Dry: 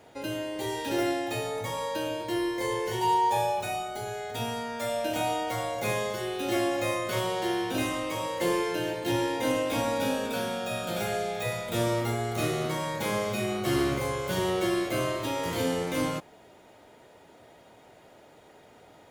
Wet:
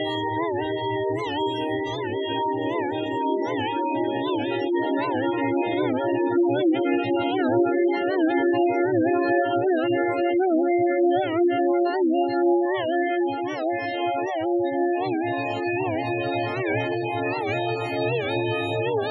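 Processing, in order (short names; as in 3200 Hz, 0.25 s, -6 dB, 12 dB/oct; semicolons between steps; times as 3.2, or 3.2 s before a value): Paulstretch 27×, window 0.50 s, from 0.69; spectral gate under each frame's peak -15 dB strong; running mean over 5 samples; notch 530 Hz, Q 12; record warp 78 rpm, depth 160 cents; gain +7.5 dB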